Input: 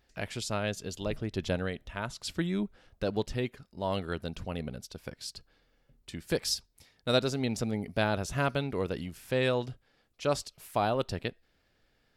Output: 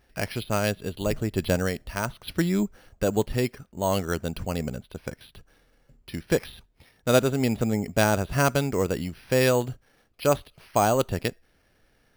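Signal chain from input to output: careless resampling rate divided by 6×, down filtered, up hold; gain +7 dB

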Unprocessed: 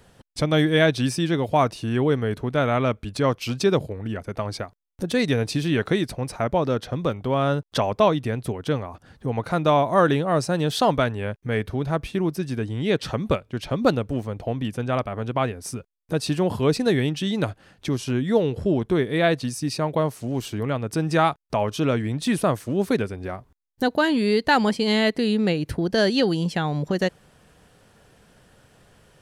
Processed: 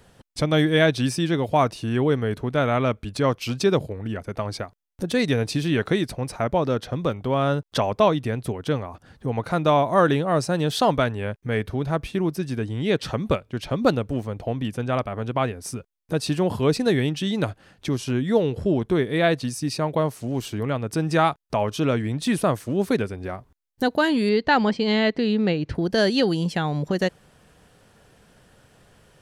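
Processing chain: 24.29–25.75 Bessel low-pass 4300 Hz, order 4

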